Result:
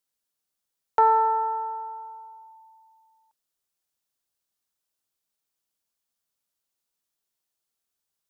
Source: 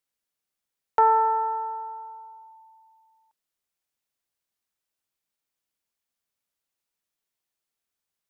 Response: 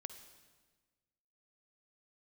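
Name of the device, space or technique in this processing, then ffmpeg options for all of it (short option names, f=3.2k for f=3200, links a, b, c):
exciter from parts: -filter_complex "[0:a]asplit=2[a][b];[b]highpass=f=2k:w=0.5412,highpass=f=2k:w=1.3066,asoftclip=type=tanh:threshold=-39.5dB,volume=-7dB[c];[a][c]amix=inputs=2:normalize=0"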